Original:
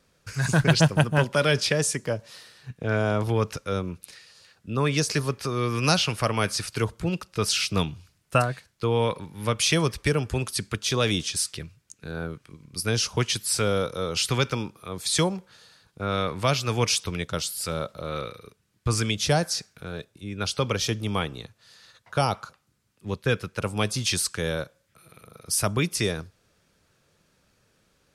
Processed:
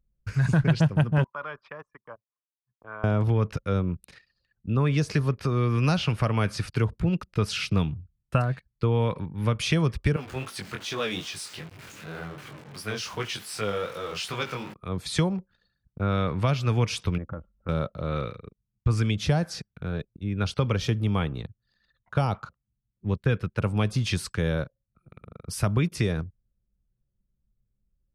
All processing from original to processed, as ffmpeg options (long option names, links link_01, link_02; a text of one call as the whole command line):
ffmpeg -i in.wav -filter_complex "[0:a]asettb=1/sr,asplit=3[link_01][link_02][link_03];[link_01]atrim=end=1.244[link_04];[link_02]atrim=start=1.24:end=3.04,asetpts=PTS-STARTPTS,afade=type=in:duration=0.004:curve=qsin,afade=type=out:start_time=1.796:duration=0.004:curve=qsin,agate=range=-33dB:threshold=-40dB:ratio=3:release=100:detection=peak,bandpass=frequency=1100:width_type=q:width=4.9[link_05];[link_03]atrim=start=3.036[link_06];[link_04][link_05]acrossfade=duration=0.004:curve1=hsin:curve2=qsin[link_07];[link_07][link_06]acrossfade=duration=0.004:curve1=qsin:curve2=hsin,asettb=1/sr,asplit=3[link_08][link_09][link_10];[link_08]atrim=end=10.164[link_11];[link_09]atrim=start=10.16:end=14.74,asetpts=PTS-STARTPTS,afade=type=in:duration=0.004:curve=qsin,afade=type=out:start_time=4.576:duration=0.004:curve=qsin,aeval=exprs='val(0)+0.5*0.0316*sgn(val(0))':channel_layout=same,highpass=frequency=710:poles=1,flanger=delay=18.5:depth=4.7:speed=2.6[link_12];[link_10]atrim=start=14.736[link_13];[link_11][link_12]acrossfade=duration=0.004:curve1=hsin:curve2=qsin[link_14];[link_14][link_13]acrossfade=duration=0.004:curve1=qsin:curve2=hsin,asettb=1/sr,asplit=3[link_15][link_16][link_17];[link_15]atrim=end=17.184[link_18];[link_16]atrim=start=17.18:end=17.69,asetpts=PTS-STARTPTS,afade=type=in:duration=0.004:curve=qsin,afade=type=out:start_time=0.506:duration=0.004:curve=qsin,lowpass=frequency=1400:width=0.5412,lowpass=frequency=1400:width=1.3066,aecho=1:1:3.6:0.52,atrim=end_sample=22491,acompressor=threshold=-35dB:ratio=5:attack=3.2:release=140:knee=1:detection=peak[link_19];[link_17]atrim=start=17.686[link_20];[link_18][link_19]acrossfade=duration=0.004:curve1=hsin:curve2=qsin[link_21];[link_21][link_20]acrossfade=duration=0.004:curve1=qsin:curve2=hsin,anlmdn=0.0158,bass=frequency=250:gain=8,treble=frequency=4000:gain=-12,acompressor=threshold=-21dB:ratio=2.5" out.wav